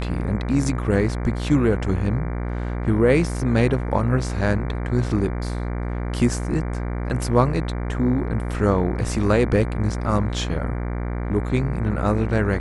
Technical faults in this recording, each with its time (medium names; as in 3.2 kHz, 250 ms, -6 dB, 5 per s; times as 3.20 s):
buzz 60 Hz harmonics 39 -26 dBFS